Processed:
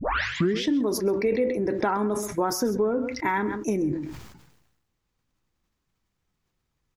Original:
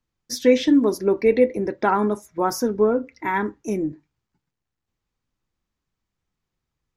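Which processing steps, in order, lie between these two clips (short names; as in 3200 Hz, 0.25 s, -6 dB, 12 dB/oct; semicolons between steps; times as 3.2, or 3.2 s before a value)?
tape start at the beginning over 0.64 s; compressor 6:1, threshold -25 dBFS, peak gain reduction 14 dB; on a send: echo 0.132 s -17.5 dB; on the sum: sustainer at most 53 dB/s; gain +3 dB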